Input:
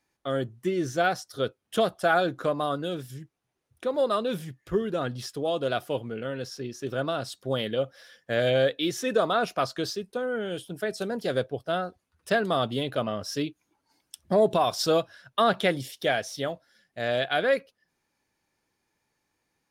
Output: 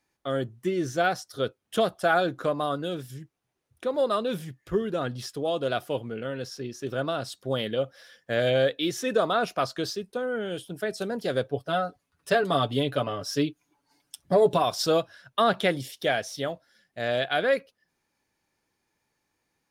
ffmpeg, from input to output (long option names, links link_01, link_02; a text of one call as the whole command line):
ffmpeg -i in.wav -filter_complex "[0:a]asettb=1/sr,asplit=3[link_01][link_02][link_03];[link_01]atrim=end=11.444[link_04];[link_02]atrim=start=11.44:end=14.62,asetpts=PTS-STARTPTS,afade=type=in:duration=0.004:curve=qsin,afade=type=out:start_time=3.176:duration=0.004:curve=qsin,aecho=1:1:7:0.65,atrim=end_sample=140238[link_05];[link_03]atrim=start=14.616[link_06];[link_04][link_05]acrossfade=duration=0.004:curve1=hsin:curve2=qsin[link_07];[link_07][link_06]acrossfade=duration=0.004:curve1=qsin:curve2=hsin" out.wav